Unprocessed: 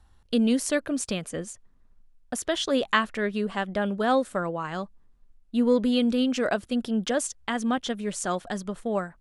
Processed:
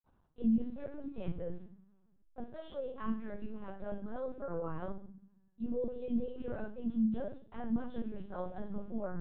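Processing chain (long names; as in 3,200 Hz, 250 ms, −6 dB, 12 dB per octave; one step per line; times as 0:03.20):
low-shelf EQ 120 Hz −7.5 dB
reversed playback
downward compressor 6 to 1, threshold −39 dBFS, peak gain reduction 20.5 dB
reversed playback
convolution reverb RT60 0.45 s, pre-delay 46 ms
linear-prediction vocoder at 8 kHz pitch kept
level −7.5 dB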